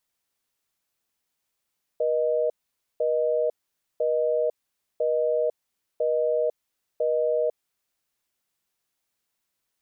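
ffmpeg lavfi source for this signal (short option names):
-f lavfi -i "aevalsrc='0.0668*(sin(2*PI*480*t)+sin(2*PI*620*t))*clip(min(mod(t,1),0.5-mod(t,1))/0.005,0,1)':d=5.78:s=44100"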